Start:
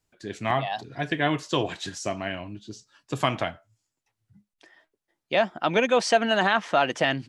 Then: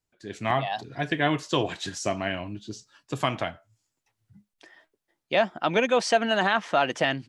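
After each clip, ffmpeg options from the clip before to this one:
-af "dynaudnorm=f=110:g=5:m=10dB,volume=-7.5dB"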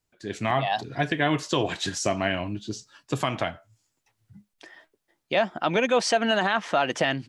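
-af "alimiter=limit=-15.5dB:level=0:latency=1:release=165,volume=4.5dB"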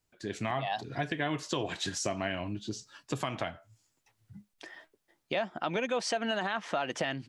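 -af "acompressor=threshold=-35dB:ratio=2"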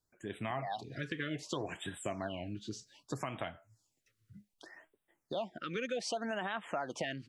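-af "afftfilt=real='re*(1-between(b*sr/1024,740*pow(5600/740,0.5+0.5*sin(2*PI*0.65*pts/sr))/1.41,740*pow(5600/740,0.5+0.5*sin(2*PI*0.65*pts/sr))*1.41))':imag='im*(1-between(b*sr/1024,740*pow(5600/740,0.5+0.5*sin(2*PI*0.65*pts/sr))/1.41,740*pow(5600/740,0.5+0.5*sin(2*PI*0.65*pts/sr))*1.41))':win_size=1024:overlap=0.75,volume=-5dB"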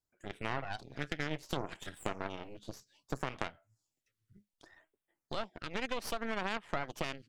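-af "aeval=exprs='0.0841*(cos(1*acos(clip(val(0)/0.0841,-1,1)))-cos(1*PI/2))+0.0211*(cos(3*acos(clip(val(0)/0.0841,-1,1)))-cos(3*PI/2))+0.00944*(cos(6*acos(clip(val(0)/0.0841,-1,1)))-cos(6*PI/2))':c=same,volume=5dB"

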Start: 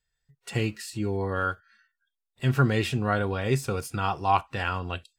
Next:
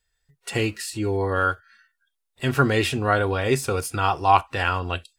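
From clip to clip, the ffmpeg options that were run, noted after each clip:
-af "equalizer=f=125:t=o:w=0.33:g=-10,equalizer=f=200:t=o:w=0.33:g=-9,equalizer=f=10k:t=o:w=0.33:g=4,volume=6dB"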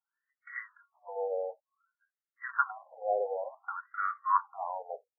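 -af "afftfilt=real='re*between(b*sr/1024,600*pow(1600/600,0.5+0.5*sin(2*PI*0.55*pts/sr))/1.41,600*pow(1600/600,0.5+0.5*sin(2*PI*0.55*pts/sr))*1.41)':imag='im*between(b*sr/1024,600*pow(1600/600,0.5+0.5*sin(2*PI*0.55*pts/sr))/1.41,600*pow(1600/600,0.5+0.5*sin(2*PI*0.55*pts/sr))*1.41)':win_size=1024:overlap=0.75,volume=-5dB"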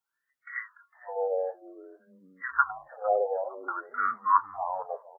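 -filter_complex "[0:a]asplit=4[a][b][c][d];[b]adelay=455,afreqshift=-140,volume=-19dB[e];[c]adelay=910,afreqshift=-280,volume=-28.6dB[f];[d]adelay=1365,afreqshift=-420,volume=-38.3dB[g];[a][e][f][g]amix=inputs=4:normalize=0,volume=4.5dB"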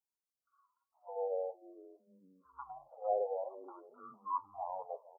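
-af "asuperstop=centerf=2000:order=8:qfactor=0.62,volume=-7.5dB"

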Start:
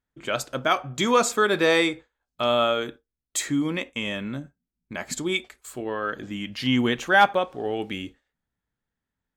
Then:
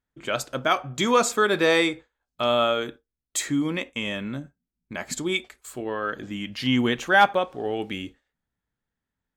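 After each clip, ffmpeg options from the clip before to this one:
-af anull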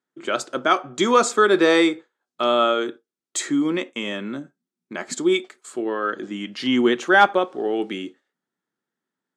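-af "highpass=f=180:w=0.5412,highpass=f=180:w=1.3066,equalizer=f=360:t=q:w=4:g=9,equalizer=f=1.3k:t=q:w=4:g=4,equalizer=f=2.5k:t=q:w=4:g=-3,lowpass=f=9.5k:w=0.5412,lowpass=f=9.5k:w=1.3066,volume=1.5dB"

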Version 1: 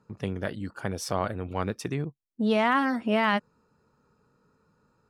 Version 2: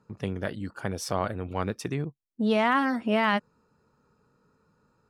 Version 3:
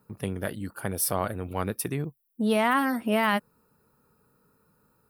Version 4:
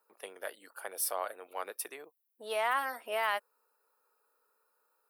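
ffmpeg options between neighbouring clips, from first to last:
-af anull
-af "aexciter=amount=7.5:drive=8.6:freq=9.4k"
-af "highpass=f=500:w=0.5412,highpass=f=500:w=1.3066,volume=-6dB"

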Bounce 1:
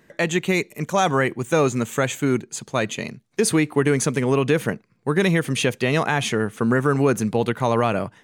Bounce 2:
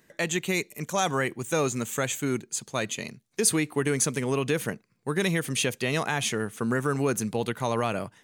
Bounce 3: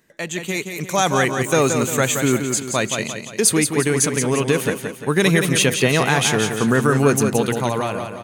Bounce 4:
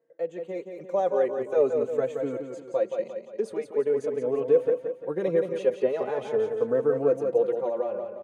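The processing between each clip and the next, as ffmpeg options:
-af "highshelf=f=4k:g=10.5,volume=-7.5dB"
-filter_complex "[0:a]dynaudnorm=f=140:g=11:m=10dB,asplit=2[a][b];[b]aecho=0:1:174|348|522|696|870:0.473|0.218|0.1|0.0461|0.0212[c];[a][c]amix=inputs=2:normalize=0"
-filter_complex "[0:a]bandpass=f=510:t=q:w=6.3:csg=0,asplit=2[a][b];[b]adelay=4,afreqshift=0.43[c];[a][c]amix=inputs=2:normalize=1,volume=6dB"

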